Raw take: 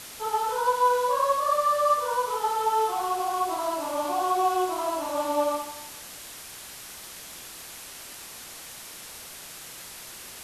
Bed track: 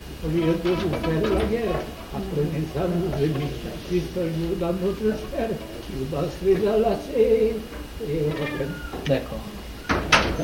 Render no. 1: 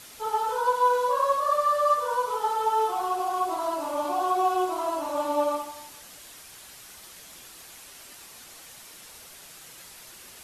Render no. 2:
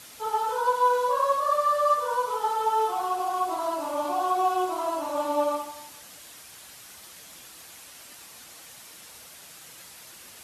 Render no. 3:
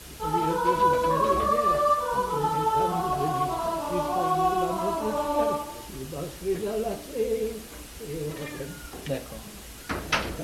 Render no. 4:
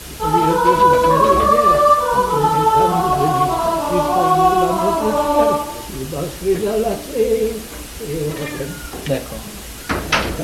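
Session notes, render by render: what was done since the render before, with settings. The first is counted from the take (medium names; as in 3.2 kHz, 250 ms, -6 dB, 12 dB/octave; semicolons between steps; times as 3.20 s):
noise reduction 6 dB, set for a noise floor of -43 dBFS
high-pass 60 Hz; band-stop 390 Hz, Q 13
add bed track -8.5 dB
trim +10.5 dB; peak limiter -2 dBFS, peak gain reduction 3 dB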